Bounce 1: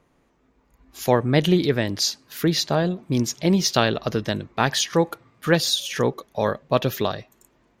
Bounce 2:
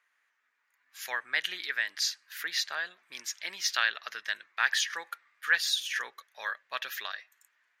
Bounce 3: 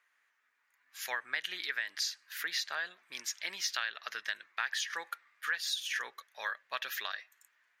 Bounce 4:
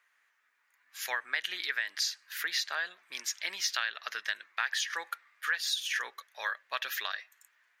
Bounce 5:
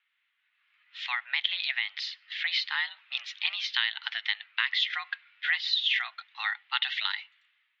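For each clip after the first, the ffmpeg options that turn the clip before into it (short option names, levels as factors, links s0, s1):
-af "highpass=f=1700:t=q:w=3.4,volume=0.398"
-af "acompressor=threshold=0.0282:ratio=5"
-af "highpass=f=320:p=1,volume=1.41"
-af "aexciter=amount=3.2:drive=5.6:freq=2700,highpass=f=550:t=q:w=0.5412,highpass=f=550:t=q:w=1.307,lowpass=f=3300:t=q:w=0.5176,lowpass=f=3300:t=q:w=0.7071,lowpass=f=3300:t=q:w=1.932,afreqshift=240,dynaudnorm=f=160:g=7:m=3.35,volume=0.473"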